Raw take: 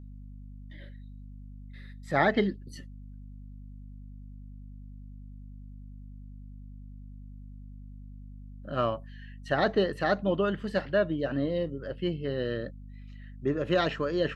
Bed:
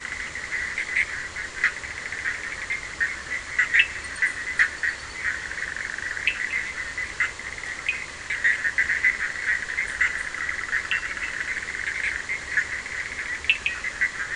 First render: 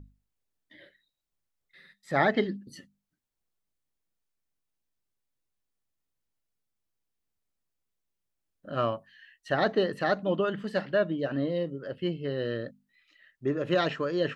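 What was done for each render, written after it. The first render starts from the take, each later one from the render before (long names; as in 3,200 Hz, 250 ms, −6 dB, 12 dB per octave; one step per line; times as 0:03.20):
mains-hum notches 50/100/150/200/250 Hz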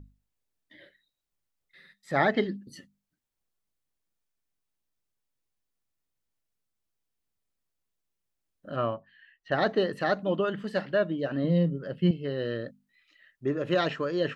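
0:08.76–0:09.52: high-frequency loss of the air 280 metres
0:11.44–0:12.11: parametric band 170 Hz +14 dB 0.49 octaves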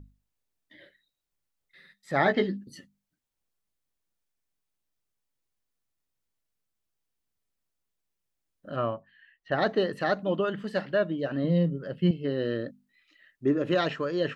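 0:02.24–0:02.64: double-tracking delay 16 ms −5.5 dB
0:08.79–0:09.62: high-shelf EQ 4,300 Hz −6.5 dB
0:12.24–0:13.72: parametric band 290 Hz +6.5 dB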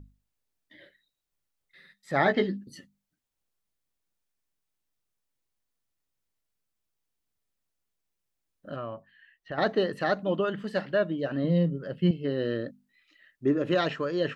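0:08.74–0:09.58: downward compressor 2.5 to 1, threshold −35 dBFS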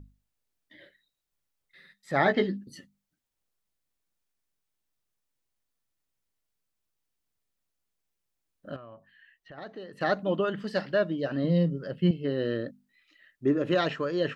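0:08.76–0:10.01: downward compressor 2 to 1, threshold −52 dBFS
0:10.60–0:11.91: parametric band 5,100 Hz +9 dB 0.43 octaves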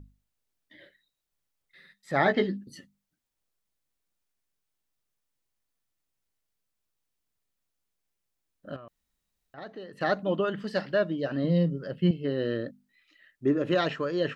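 0:08.88–0:09.54: fill with room tone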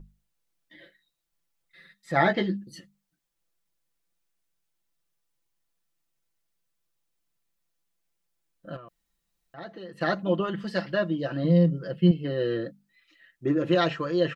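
comb filter 5.9 ms, depth 70%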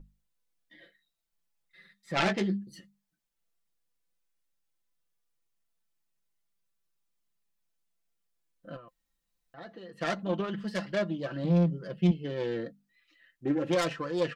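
phase distortion by the signal itself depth 0.28 ms
flanger 0.22 Hz, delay 3.7 ms, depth 1.5 ms, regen +61%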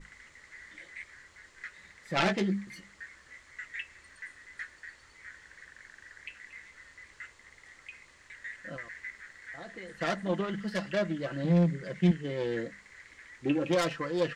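mix in bed −21.5 dB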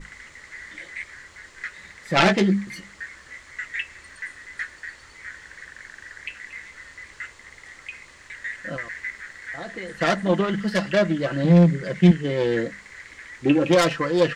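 level +10 dB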